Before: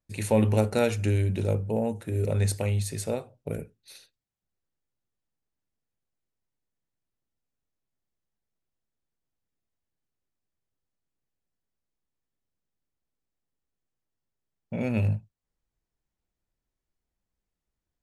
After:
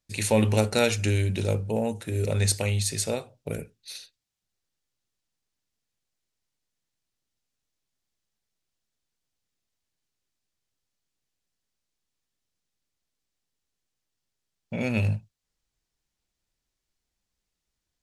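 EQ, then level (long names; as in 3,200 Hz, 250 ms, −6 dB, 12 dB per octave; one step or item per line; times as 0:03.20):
parametric band 5,000 Hz +10.5 dB 2.6 octaves
0.0 dB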